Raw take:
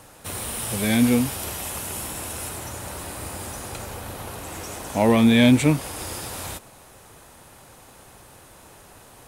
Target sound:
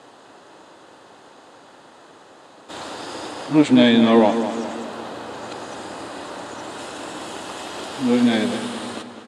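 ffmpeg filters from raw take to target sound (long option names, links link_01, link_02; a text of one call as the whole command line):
ffmpeg -i in.wav -filter_complex "[0:a]areverse,highpass=270,equalizer=frequency=300:width_type=q:width=4:gain=5,equalizer=frequency=2300:width_type=q:width=4:gain=-8,equalizer=frequency=5700:width_type=q:width=4:gain=-9,lowpass=frequency=6300:width=0.5412,lowpass=frequency=6300:width=1.3066,asplit=2[link_01][link_02];[link_02]adelay=206,lowpass=frequency=4400:poles=1,volume=-10dB,asplit=2[link_03][link_04];[link_04]adelay=206,lowpass=frequency=4400:poles=1,volume=0.54,asplit=2[link_05][link_06];[link_06]adelay=206,lowpass=frequency=4400:poles=1,volume=0.54,asplit=2[link_07][link_08];[link_08]adelay=206,lowpass=frequency=4400:poles=1,volume=0.54,asplit=2[link_09][link_10];[link_10]adelay=206,lowpass=frequency=4400:poles=1,volume=0.54,asplit=2[link_11][link_12];[link_12]adelay=206,lowpass=frequency=4400:poles=1,volume=0.54[link_13];[link_01][link_03][link_05][link_07][link_09][link_11][link_13]amix=inputs=7:normalize=0,volume=4dB" out.wav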